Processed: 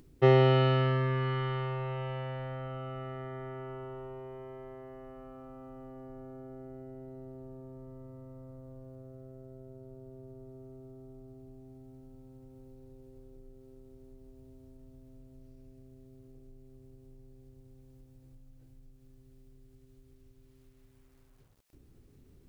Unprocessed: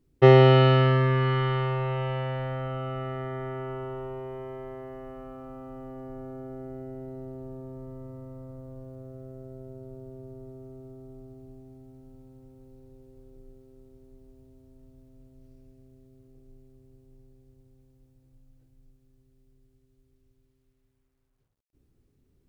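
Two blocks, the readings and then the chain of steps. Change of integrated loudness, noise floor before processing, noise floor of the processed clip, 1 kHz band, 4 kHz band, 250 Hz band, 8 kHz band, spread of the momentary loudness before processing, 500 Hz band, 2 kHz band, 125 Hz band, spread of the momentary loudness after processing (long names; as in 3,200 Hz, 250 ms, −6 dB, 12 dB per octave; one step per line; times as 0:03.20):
−7.5 dB, −70 dBFS, −61 dBFS, −7.0 dB, −7.0 dB, −7.0 dB, can't be measured, 25 LU, −7.0 dB, −7.0 dB, −7.0 dB, 24 LU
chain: upward compression, threshold −37 dBFS
level −7 dB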